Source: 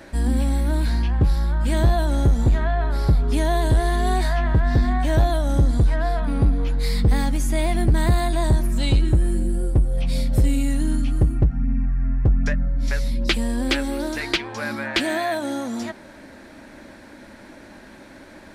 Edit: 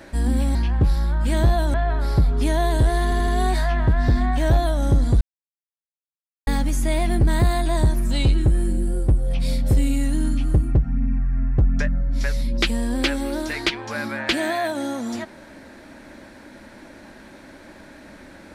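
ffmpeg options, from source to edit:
-filter_complex "[0:a]asplit=8[a][b][c][d][e][f][g][h];[a]atrim=end=0.552[i];[b]atrim=start=0.948:end=2.142[j];[c]atrim=start=2.648:end=4.032[k];[d]atrim=start=3.948:end=4.032[l];[e]atrim=start=3.948:end=4.032[m];[f]atrim=start=3.948:end=5.88,asetpts=PTS-STARTPTS,afade=t=out:st=1.928:d=0.004:c=hsin[n];[g]atrim=start=5.88:end=7.14,asetpts=PTS-STARTPTS,volume=0[o];[h]atrim=start=7.14,asetpts=PTS-STARTPTS,afade=t=in:d=0.004:c=hsin[p];[i][j]acrossfade=d=0.004:c1=hsin:c2=hsin[q];[q][k]acrossfade=d=0.004:c1=hsin:c2=hsin[r];[r][l]acrossfade=d=0.004:c1=hsin:c2=hsin[s];[s][m]acrossfade=d=0.004:c1=hsin:c2=hsin[t];[n][o][p]concat=n=3:v=0:a=1[u];[t][u]acrossfade=d=0.004:c1=hsin:c2=hsin"

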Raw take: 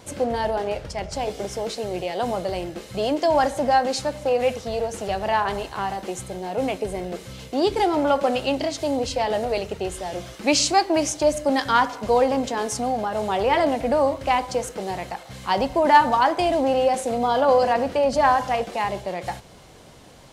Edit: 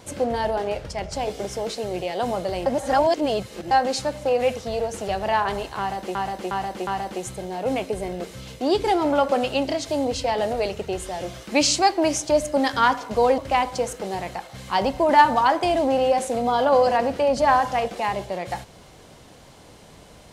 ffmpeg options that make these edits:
-filter_complex "[0:a]asplit=7[a][b][c][d][e][f][g];[a]atrim=end=2.662[h];[b]atrim=start=2.658:end=3.712,asetpts=PTS-STARTPTS,areverse[i];[c]atrim=start=3.708:end=6.152[j];[d]atrim=start=5.788:end=6.152[k];[e]atrim=start=5.788:end=6.152[l];[f]atrim=start=5.788:end=12.302[m];[g]atrim=start=14.138[n];[h][i]acrossfade=d=0.004:c1=hsin:c2=hsin[o];[o][j]acrossfade=d=0.004:c1=hsin:c2=hsin[p];[p][k]acrossfade=d=0.004:c1=hsin:c2=hsin[q];[q][l]acrossfade=d=0.004:c1=hsin:c2=hsin[r];[r][m]acrossfade=d=0.004:c1=hsin:c2=hsin[s];[s][n]acrossfade=d=0.004:c1=hsin:c2=hsin"

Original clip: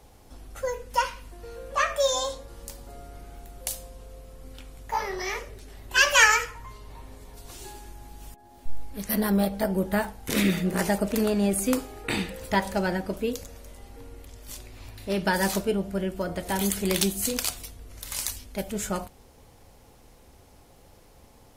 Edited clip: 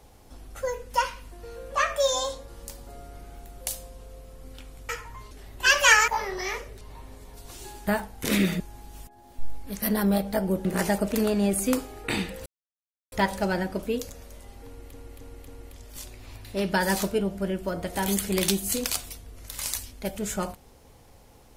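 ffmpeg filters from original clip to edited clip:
-filter_complex "[0:a]asplit=12[a][b][c][d][e][f][g][h][i][j][k][l];[a]atrim=end=4.892[m];[b]atrim=start=6.388:end=6.812[n];[c]atrim=start=5.618:end=6.392[o];[d]atrim=start=4.888:end=5.622[p];[e]atrim=start=6.808:end=7.872[q];[f]atrim=start=9.918:end=10.652[r];[g]atrim=start=7.868:end=9.922[s];[h]atrim=start=10.648:end=12.46,asetpts=PTS-STARTPTS,afade=t=out:st=1.808:d=0.004:c=hsin,apad=pad_dur=0.66[t];[i]atrim=start=12.46:end=14.282,asetpts=PTS-STARTPTS,afade=t=in:d=0.004:c=hsin[u];[j]atrim=start=14.008:end=14.282[v];[k]atrim=start=14.008:end=14.282[w];[l]atrim=start=14.008[x];[m][n]acrossfade=d=0.004:c1=hsin:c2=hsin[y];[y][o]acrossfade=d=0.004:c1=hsin:c2=hsin[z];[z][p]acrossfade=d=0.004:c1=hsin:c2=hsin[aa];[aa][q]acrossfade=d=0.004:c1=hsin:c2=hsin[ab];[ab][r]acrossfade=d=0.004:c1=hsin:c2=hsin[ac];[ac][s]acrossfade=d=0.004:c1=hsin:c2=hsin[ad];[t][u]concat=n=2:v=0:a=1[ae];[ad][ae]acrossfade=d=0.004:c1=hsin:c2=hsin[af];[af][v]acrossfade=d=0.004:c1=hsin:c2=hsin[ag];[ag][w]acrossfade=d=0.004:c1=hsin:c2=hsin[ah];[ah][x]acrossfade=d=0.004:c1=hsin:c2=hsin"

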